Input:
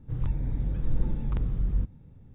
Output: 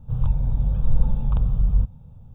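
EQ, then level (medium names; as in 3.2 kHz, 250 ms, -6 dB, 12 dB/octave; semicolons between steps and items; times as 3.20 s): static phaser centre 810 Hz, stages 4; +8.0 dB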